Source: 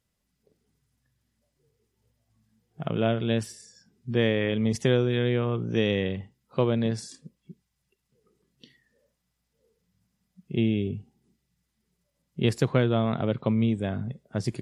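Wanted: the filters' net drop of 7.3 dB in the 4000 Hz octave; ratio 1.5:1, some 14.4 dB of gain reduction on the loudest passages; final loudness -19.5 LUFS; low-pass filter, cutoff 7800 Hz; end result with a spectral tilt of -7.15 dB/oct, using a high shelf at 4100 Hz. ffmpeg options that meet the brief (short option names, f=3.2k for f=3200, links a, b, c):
-af "lowpass=7.8k,equalizer=f=4k:t=o:g=-6.5,highshelf=f=4.1k:g=-6,acompressor=threshold=-60dB:ratio=1.5,volume=21.5dB"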